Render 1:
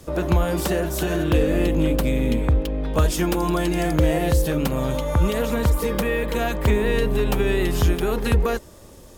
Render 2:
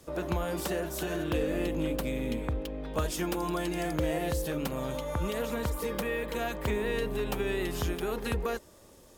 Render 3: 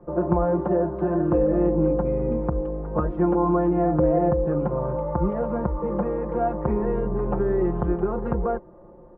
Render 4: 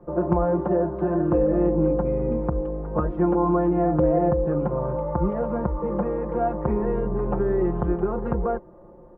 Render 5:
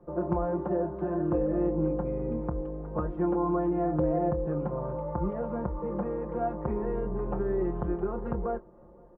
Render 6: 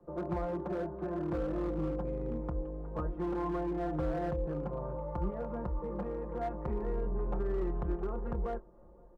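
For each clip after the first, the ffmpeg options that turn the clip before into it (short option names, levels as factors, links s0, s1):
-af "lowshelf=f=170:g=-7.5,volume=0.398"
-af "lowpass=f=1100:w=0.5412,lowpass=f=1100:w=1.3066,aecho=1:1:5.7:0.81,volume=2.24"
-af "asoftclip=type=hard:threshold=0.376"
-filter_complex "[0:a]asplit=2[s0][s1];[s1]adelay=26,volume=0.2[s2];[s0][s2]amix=inputs=2:normalize=0,asplit=2[s3][s4];[s4]adelay=507.3,volume=0.0355,highshelf=f=4000:g=-11.4[s5];[s3][s5]amix=inputs=2:normalize=0,volume=0.447"
-filter_complex "[0:a]asubboost=boost=2:cutoff=83,acrossover=split=170|1100[s0][s1][s2];[s1]asoftclip=type=hard:threshold=0.0422[s3];[s0][s3][s2]amix=inputs=3:normalize=0,volume=0.562"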